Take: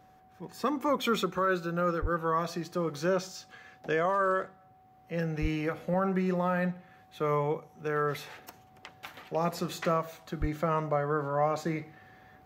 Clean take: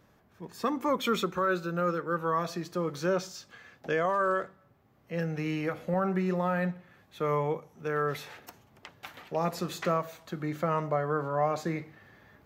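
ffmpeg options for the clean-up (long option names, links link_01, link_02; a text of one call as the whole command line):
ffmpeg -i in.wav -filter_complex "[0:a]bandreject=frequency=750:width=30,asplit=3[link_01][link_02][link_03];[link_01]afade=type=out:start_time=2.01:duration=0.02[link_04];[link_02]highpass=frequency=140:width=0.5412,highpass=frequency=140:width=1.3066,afade=type=in:start_time=2.01:duration=0.02,afade=type=out:start_time=2.13:duration=0.02[link_05];[link_03]afade=type=in:start_time=2.13:duration=0.02[link_06];[link_04][link_05][link_06]amix=inputs=3:normalize=0,asplit=3[link_07][link_08][link_09];[link_07]afade=type=out:start_time=5.41:duration=0.02[link_10];[link_08]highpass=frequency=140:width=0.5412,highpass=frequency=140:width=1.3066,afade=type=in:start_time=5.41:duration=0.02,afade=type=out:start_time=5.53:duration=0.02[link_11];[link_09]afade=type=in:start_time=5.53:duration=0.02[link_12];[link_10][link_11][link_12]amix=inputs=3:normalize=0,asplit=3[link_13][link_14][link_15];[link_13]afade=type=out:start_time=10.4:duration=0.02[link_16];[link_14]highpass=frequency=140:width=0.5412,highpass=frequency=140:width=1.3066,afade=type=in:start_time=10.4:duration=0.02,afade=type=out:start_time=10.52:duration=0.02[link_17];[link_15]afade=type=in:start_time=10.52:duration=0.02[link_18];[link_16][link_17][link_18]amix=inputs=3:normalize=0" out.wav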